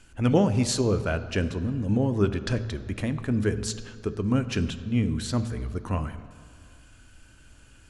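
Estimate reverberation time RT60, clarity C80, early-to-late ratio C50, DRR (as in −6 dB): non-exponential decay, 14.0 dB, 13.0 dB, 10.5 dB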